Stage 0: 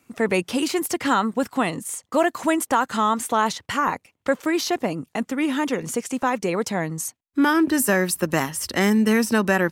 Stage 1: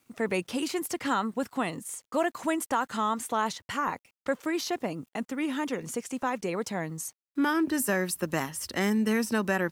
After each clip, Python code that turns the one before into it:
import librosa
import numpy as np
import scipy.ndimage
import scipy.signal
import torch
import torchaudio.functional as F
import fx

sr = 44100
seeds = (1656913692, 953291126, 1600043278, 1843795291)

y = fx.quant_dither(x, sr, seeds[0], bits=10, dither='none')
y = F.gain(torch.from_numpy(y), -7.5).numpy()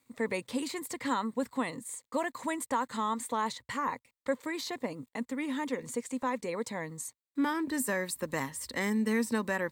y = fx.ripple_eq(x, sr, per_octave=1.0, db=8)
y = F.gain(torch.from_numpy(y), -4.5).numpy()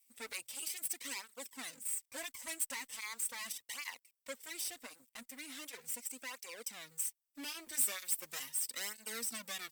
y = fx.lower_of_two(x, sr, delay_ms=0.36)
y = scipy.signal.lfilter([1.0, -0.97], [1.0], y)
y = fx.flanger_cancel(y, sr, hz=0.39, depth_ms=7.2)
y = F.gain(torch.from_numpy(y), 7.0).numpy()